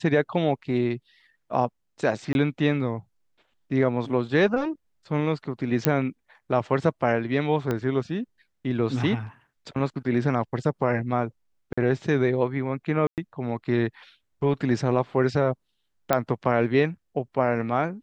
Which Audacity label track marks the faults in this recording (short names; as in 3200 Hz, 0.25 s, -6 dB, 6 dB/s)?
2.330000	2.350000	gap 21 ms
5.850000	5.850000	pop -3 dBFS
7.710000	7.710000	pop -14 dBFS
11.730000	11.780000	gap 45 ms
13.070000	13.180000	gap 0.108 s
16.130000	16.130000	pop -7 dBFS